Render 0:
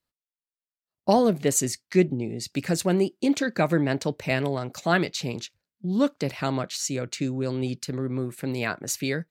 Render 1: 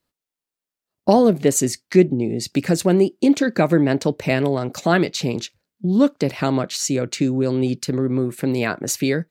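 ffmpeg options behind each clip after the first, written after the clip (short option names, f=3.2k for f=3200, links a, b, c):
-filter_complex "[0:a]equalizer=f=320:w=0.63:g=5.5,asplit=2[a][b];[b]acompressor=threshold=-26dB:ratio=6,volume=0.5dB[c];[a][c]amix=inputs=2:normalize=0"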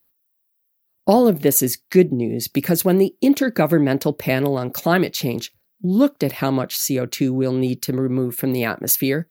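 -af "aexciter=amount=6.3:drive=8.5:freq=11k"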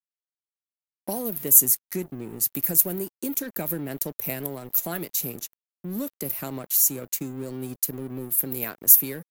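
-filter_complex "[0:a]aexciter=amount=5:drive=8.5:freq=6.3k,acrossover=split=150|3000[a][b][c];[b]acompressor=threshold=-16dB:ratio=4[d];[a][d][c]amix=inputs=3:normalize=0,aeval=exprs='sgn(val(0))*max(abs(val(0))-0.0266,0)':c=same,volume=-11.5dB"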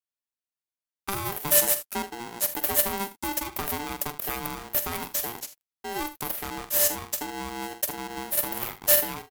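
-af "aeval=exprs='(tanh(6.31*val(0)+0.6)-tanh(0.6))/6.31':c=same,aecho=1:1:46|78:0.251|0.178,aeval=exprs='val(0)*sgn(sin(2*PI*590*n/s))':c=same,volume=1dB"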